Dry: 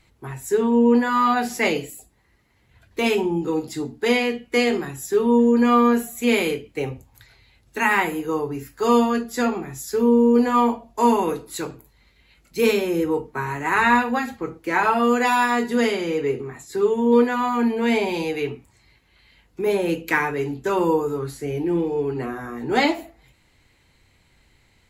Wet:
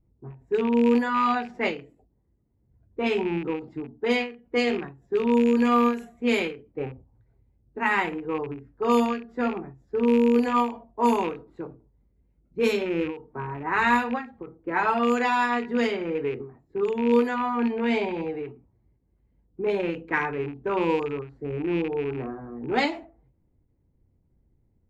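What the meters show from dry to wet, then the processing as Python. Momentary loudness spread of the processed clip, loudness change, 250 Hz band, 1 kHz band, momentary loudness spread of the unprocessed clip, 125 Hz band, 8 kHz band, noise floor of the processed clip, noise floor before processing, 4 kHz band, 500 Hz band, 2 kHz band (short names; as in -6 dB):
15 LU, -4.5 dB, -4.5 dB, -4.5 dB, 13 LU, -5.0 dB, -14.0 dB, -68 dBFS, -61 dBFS, -5.5 dB, -4.5 dB, -4.5 dB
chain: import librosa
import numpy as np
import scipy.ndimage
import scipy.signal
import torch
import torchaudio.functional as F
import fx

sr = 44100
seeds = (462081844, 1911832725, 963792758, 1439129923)

y = fx.rattle_buzz(x, sr, strikes_db=-30.0, level_db=-20.0)
y = fx.env_lowpass(y, sr, base_hz=350.0, full_db=-12.0)
y = fx.end_taper(y, sr, db_per_s=140.0)
y = y * 10.0 ** (-4.0 / 20.0)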